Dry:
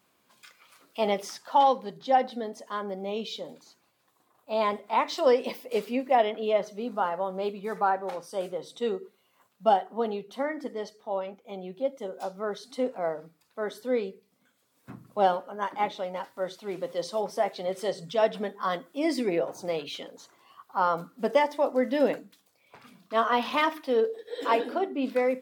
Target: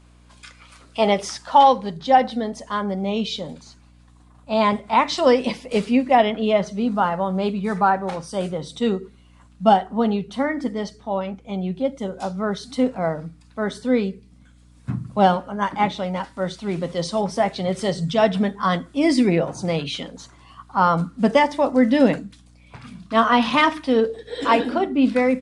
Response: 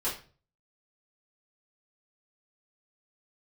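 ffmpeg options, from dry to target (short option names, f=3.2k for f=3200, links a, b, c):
-af "aresample=22050,aresample=44100,asubboost=boost=8:cutoff=150,aeval=exprs='val(0)+0.00112*(sin(2*PI*60*n/s)+sin(2*PI*2*60*n/s)/2+sin(2*PI*3*60*n/s)/3+sin(2*PI*4*60*n/s)/4+sin(2*PI*5*60*n/s)/5)':c=same,volume=9dB"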